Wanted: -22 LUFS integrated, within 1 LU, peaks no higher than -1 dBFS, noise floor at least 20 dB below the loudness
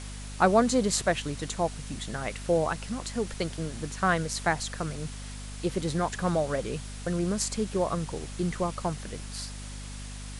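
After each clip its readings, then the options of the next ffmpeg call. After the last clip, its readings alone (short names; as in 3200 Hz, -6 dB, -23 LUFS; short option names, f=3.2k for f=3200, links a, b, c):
hum 50 Hz; harmonics up to 250 Hz; hum level -38 dBFS; noise floor -40 dBFS; noise floor target -50 dBFS; loudness -29.5 LUFS; peak -8.5 dBFS; loudness target -22.0 LUFS
-> -af "bandreject=f=50:t=h:w=4,bandreject=f=100:t=h:w=4,bandreject=f=150:t=h:w=4,bandreject=f=200:t=h:w=4,bandreject=f=250:t=h:w=4"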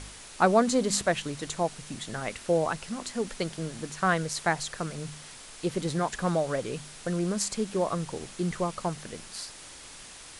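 hum none; noise floor -47 dBFS; noise floor target -50 dBFS
-> -af "afftdn=nr=6:nf=-47"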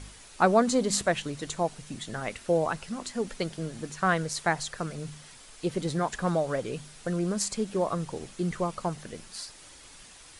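noise floor -51 dBFS; loudness -29.5 LUFS; peak -9.0 dBFS; loudness target -22.0 LUFS
-> -af "volume=7.5dB"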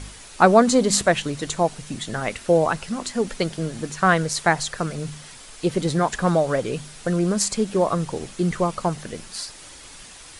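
loudness -22.0 LUFS; peak -1.5 dBFS; noise floor -43 dBFS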